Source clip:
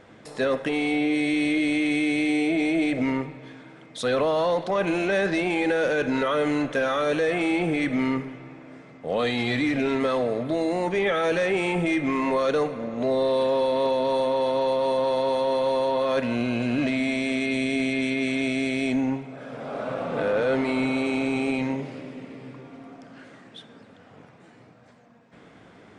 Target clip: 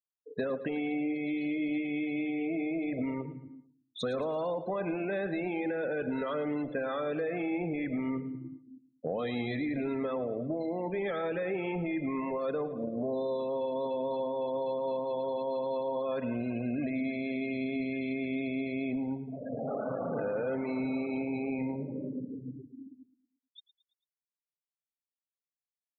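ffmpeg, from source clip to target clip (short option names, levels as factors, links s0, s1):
-filter_complex "[0:a]agate=range=0.0224:threshold=0.0112:ratio=3:detection=peak,afftfilt=real='re*gte(hypot(re,im),0.0398)':imag='im*gte(hypot(re,im),0.0398)':win_size=1024:overlap=0.75,tiltshelf=f=970:g=3,acompressor=threshold=0.0282:ratio=6,asplit=2[s0][s1];[s1]aecho=0:1:111|222|333|444:0.168|0.0739|0.0325|0.0143[s2];[s0][s2]amix=inputs=2:normalize=0"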